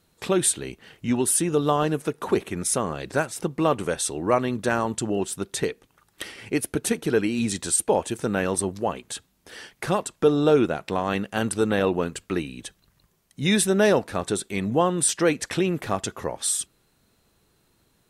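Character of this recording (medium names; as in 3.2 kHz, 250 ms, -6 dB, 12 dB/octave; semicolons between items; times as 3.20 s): noise floor -67 dBFS; spectral tilt -4.0 dB/octave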